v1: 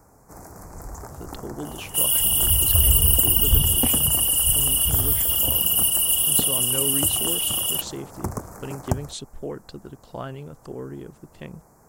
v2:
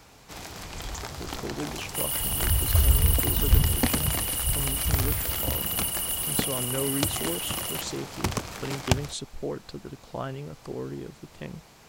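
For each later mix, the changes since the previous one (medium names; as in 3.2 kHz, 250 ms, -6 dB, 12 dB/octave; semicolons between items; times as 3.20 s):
first sound: remove Butterworth band-stop 3.2 kHz, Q 0.5; second sound -9.5 dB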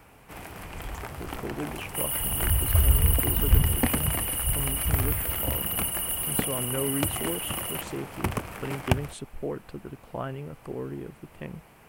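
master: add high-order bell 5.1 kHz -12.5 dB 1.3 oct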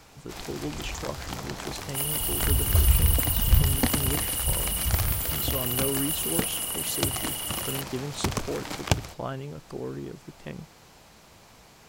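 speech: entry -0.95 s; master: add high-order bell 5.1 kHz +12.5 dB 1.3 oct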